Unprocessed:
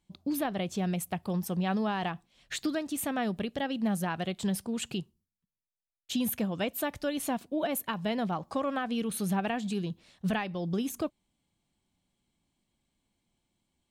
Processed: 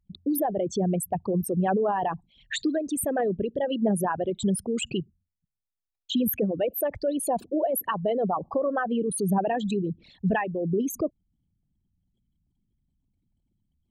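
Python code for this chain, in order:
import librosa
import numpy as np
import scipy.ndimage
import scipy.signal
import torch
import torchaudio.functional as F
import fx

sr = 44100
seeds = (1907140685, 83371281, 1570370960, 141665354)

y = fx.envelope_sharpen(x, sr, power=3.0)
y = y * librosa.db_to_amplitude(5.5)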